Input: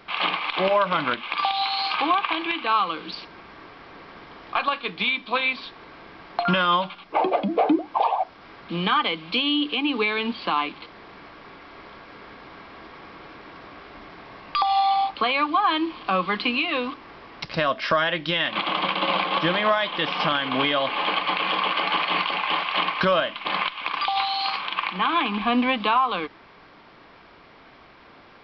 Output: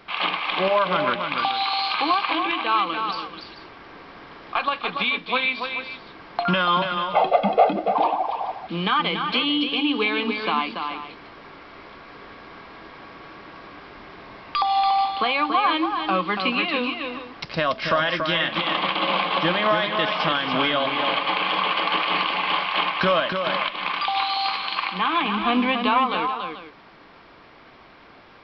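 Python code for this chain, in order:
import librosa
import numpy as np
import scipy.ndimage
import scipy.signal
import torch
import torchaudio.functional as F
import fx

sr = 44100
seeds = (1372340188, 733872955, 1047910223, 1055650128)

y = fx.comb(x, sr, ms=1.5, depth=0.88, at=(6.85, 7.76))
y = fx.echo_multitap(y, sr, ms=(285, 435), db=(-6.0, -13.0))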